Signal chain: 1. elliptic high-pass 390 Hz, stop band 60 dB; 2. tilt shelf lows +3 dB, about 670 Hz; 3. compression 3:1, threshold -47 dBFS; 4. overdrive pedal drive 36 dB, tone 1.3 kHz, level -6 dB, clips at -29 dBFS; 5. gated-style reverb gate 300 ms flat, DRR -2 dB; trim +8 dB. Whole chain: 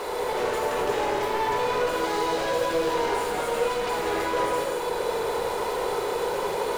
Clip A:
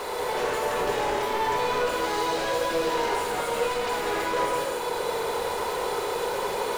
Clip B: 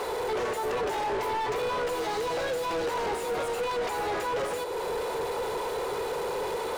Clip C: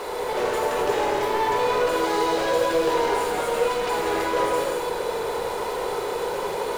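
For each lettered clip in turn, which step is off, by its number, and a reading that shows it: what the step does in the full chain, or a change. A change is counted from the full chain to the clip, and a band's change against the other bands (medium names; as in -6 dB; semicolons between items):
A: 2, 250 Hz band -2.0 dB; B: 5, crest factor change -5.5 dB; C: 3, mean gain reduction 7.5 dB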